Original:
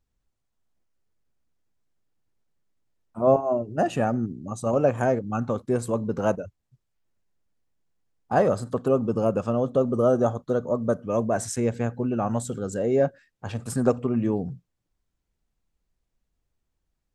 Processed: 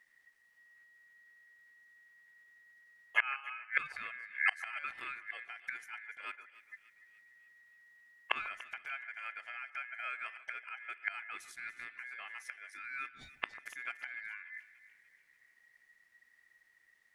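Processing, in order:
gate with flip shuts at −24 dBFS, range −29 dB
ring modulation 1,900 Hz
echo with a time of its own for lows and highs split 1,800 Hz, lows 144 ms, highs 292 ms, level −15.5 dB
level +10.5 dB

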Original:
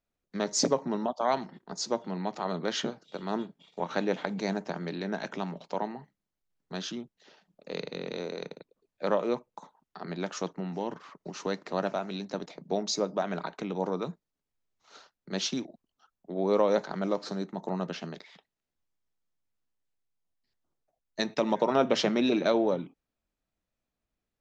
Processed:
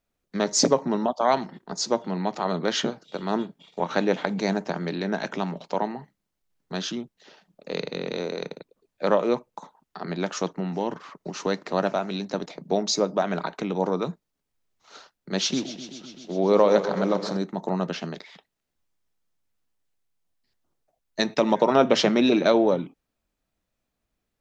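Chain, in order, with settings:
0:15.37–0:17.37: feedback echo with a swinging delay time 128 ms, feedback 78%, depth 88 cents, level −12.5 dB
level +6 dB

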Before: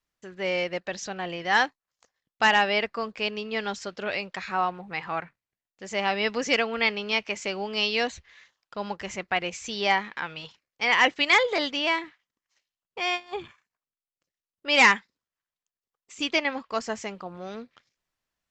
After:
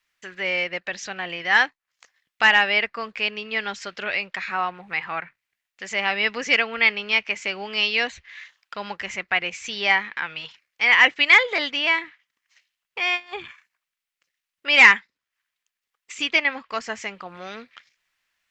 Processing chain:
parametric band 2,100 Hz +11 dB 1.6 octaves
one half of a high-frequency compander encoder only
level −3.5 dB

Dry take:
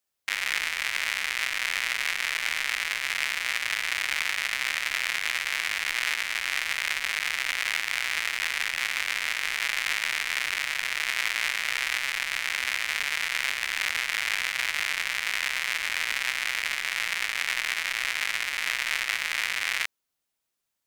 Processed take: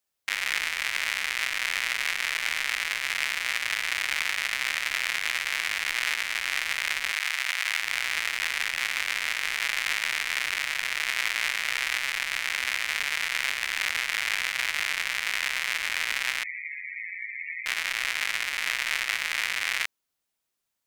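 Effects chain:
0:07.12–0:07.82: high-pass filter 630 Hz 12 dB per octave
0:16.43–0:17.66: spectral peaks only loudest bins 8

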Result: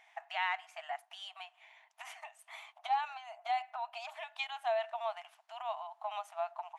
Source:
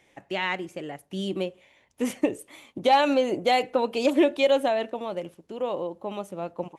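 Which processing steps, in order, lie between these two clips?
low-pass filter 1,800 Hz 6 dB per octave, from 0:02.78 1,100 Hz, from 0:04.10 2,500 Hz
downward compressor 6 to 1, threshold −32 dBFS, peak gain reduction 15 dB
linear-phase brick-wall high-pass 630 Hz
level +4 dB

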